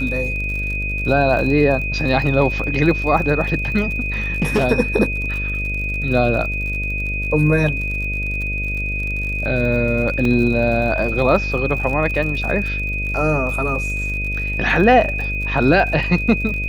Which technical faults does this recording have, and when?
mains buzz 50 Hz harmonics 13 −25 dBFS
surface crackle 51 per second −27 dBFS
whistle 2,500 Hz −23 dBFS
0:04.42–0:04.65: clipping −12 dBFS
0:10.25: drop-out 2.2 ms

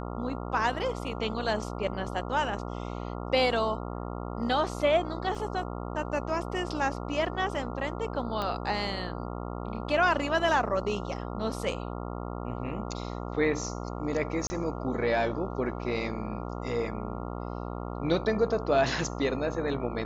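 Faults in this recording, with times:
mains buzz 60 Hz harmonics 23 −36 dBFS
0:05.35: drop-out 3.7 ms
0:08.42: click −19 dBFS
0:14.47–0:14.50: drop-out 30 ms

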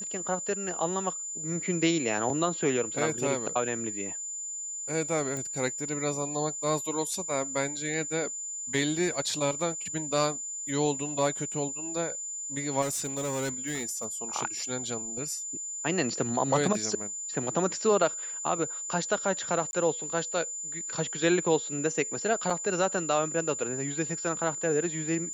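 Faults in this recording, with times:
whistle 7,100 Hz −34 dBFS
0:05.37: click
0:12.81–0:14.05: clipping −27.5 dBFS
0:19.71–0:19.73: drop-out 21 ms
0:22.50: drop-out 3.5 ms

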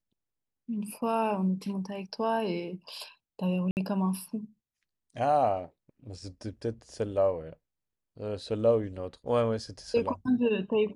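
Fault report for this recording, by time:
0:03.71–0:03.77: drop-out 59 ms

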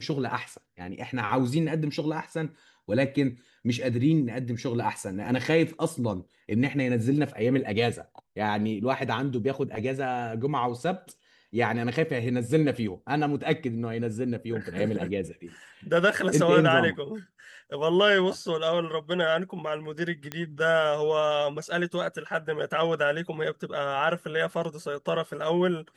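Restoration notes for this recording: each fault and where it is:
0:20.32: click −16 dBFS

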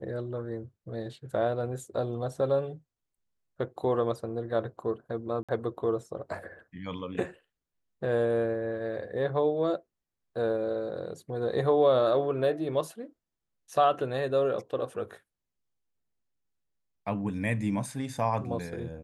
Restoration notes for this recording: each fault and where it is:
0:05.43–0:05.49: drop-out 56 ms

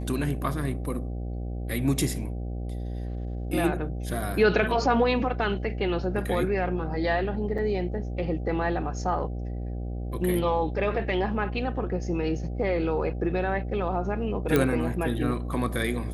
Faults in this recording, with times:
mains buzz 60 Hz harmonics 13 −32 dBFS
0:07.58–0:07.59: drop-out 5.4 ms
0:14.56: click −9 dBFS

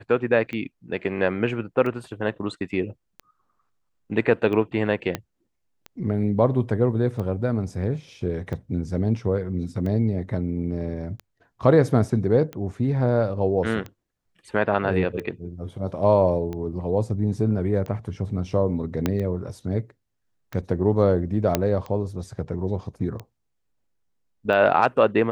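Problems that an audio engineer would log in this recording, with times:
scratch tick 45 rpm −21 dBFS
0:05.15: click −11 dBFS
0:19.06: click −9 dBFS
0:21.55: click −5 dBFS

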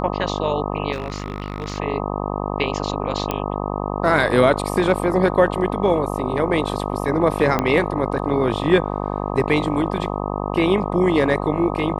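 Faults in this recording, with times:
mains buzz 50 Hz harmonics 25 −25 dBFS
0:00.92–0:01.78: clipping −20.5 dBFS
0:03.31: click −8 dBFS
0:07.59: click −6 dBFS

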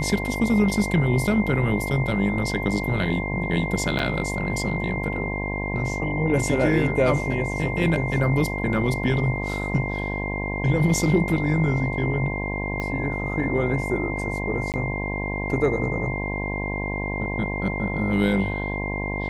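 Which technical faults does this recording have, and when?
mains buzz 50 Hz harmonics 21 −29 dBFS
whistle 2,100 Hz −30 dBFS
0:03.99: drop-out 3.9 ms
0:12.80: click −16 dBFS
0:14.72–0:14.74: drop-out 18 ms

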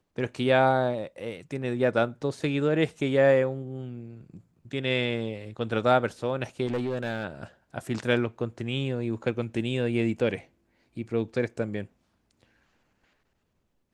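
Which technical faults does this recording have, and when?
0:06.66–0:07.25: clipping −24.5 dBFS

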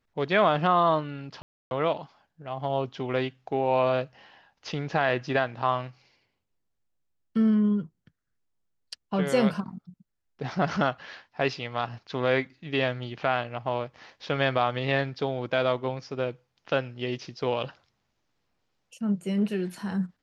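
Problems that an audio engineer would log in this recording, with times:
0:01.42–0:01.71: drop-out 291 ms

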